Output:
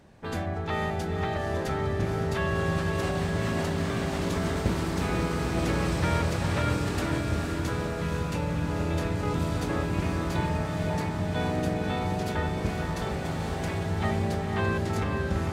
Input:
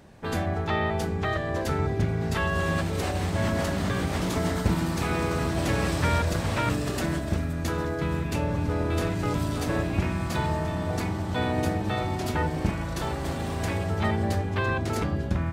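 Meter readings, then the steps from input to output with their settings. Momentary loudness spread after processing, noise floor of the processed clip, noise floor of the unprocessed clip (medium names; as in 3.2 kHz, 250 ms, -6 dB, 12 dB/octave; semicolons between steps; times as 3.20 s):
3 LU, -32 dBFS, -31 dBFS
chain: treble shelf 11 kHz -5.5 dB; on a send: echo that smears into a reverb 493 ms, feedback 63%, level -4 dB; on the sum: trim -3.5 dB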